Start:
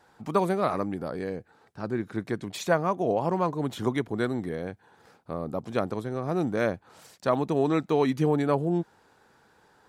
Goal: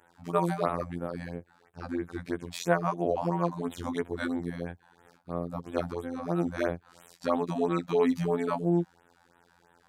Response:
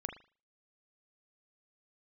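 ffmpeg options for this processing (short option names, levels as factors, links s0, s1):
-af "afftfilt=real='hypot(re,im)*cos(PI*b)':imag='0':win_size=2048:overlap=0.75,afftfilt=real='re*(1-between(b*sr/1024,350*pow(5700/350,0.5+0.5*sin(2*PI*3*pts/sr))/1.41,350*pow(5700/350,0.5+0.5*sin(2*PI*3*pts/sr))*1.41))':imag='im*(1-between(b*sr/1024,350*pow(5700/350,0.5+0.5*sin(2*PI*3*pts/sr))/1.41,350*pow(5700/350,0.5+0.5*sin(2*PI*3*pts/sr))*1.41))':win_size=1024:overlap=0.75,volume=1.19"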